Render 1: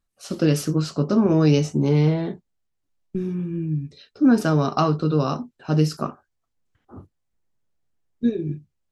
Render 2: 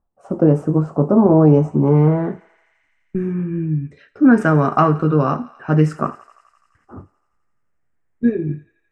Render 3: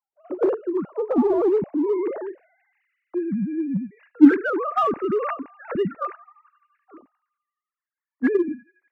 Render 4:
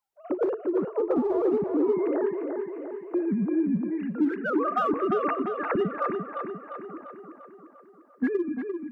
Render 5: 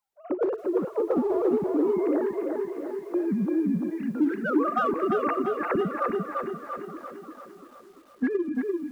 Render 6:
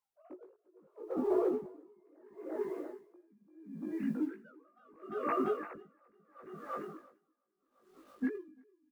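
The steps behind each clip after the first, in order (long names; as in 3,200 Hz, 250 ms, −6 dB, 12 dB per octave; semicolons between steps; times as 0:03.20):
high shelf with overshoot 6,000 Hz +13.5 dB, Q 3; feedback echo with a high-pass in the loop 85 ms, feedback 81%, high-pass 720 Hz, level −19 dB; low-pass filter sweep 840 Hz → 1,900 Hz, 0:01.46–0:02.82; level +4.5 dB
three sine waves on the formant tracks; parametric band 780 Hz −2.5 dB 0.72 octaves; in parallel at −9 dB: gain into a clipping stage and back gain 14.5 dB; on the sum: level −7.5 dB
downward compressor 5 to 1, threshold −30 dBFS, peak gain reduction 21 dB; on a send: tape delay 347 ms, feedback 62%, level −4.5 dB, low-pass 2,700 Hz; on the sum: level +5.5 dB
feedback echo at a low word length 341 ms, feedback 55%, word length 9 bits, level −9 dB
floating-point word with a short mantissa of 6 bits; double-tracking delay 19 ms −2 dB; tremolo with a sine in dB 0.74 Hz, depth 36 dB; level −6.5 dB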